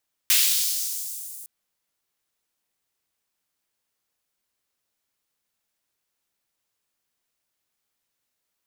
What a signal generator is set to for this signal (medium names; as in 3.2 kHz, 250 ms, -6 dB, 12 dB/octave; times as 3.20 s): swept filtered noise white, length 1.16 s highpass, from 2.3 kHz, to 9.2 kHz, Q 1.2, linear, gain ramp -23 dB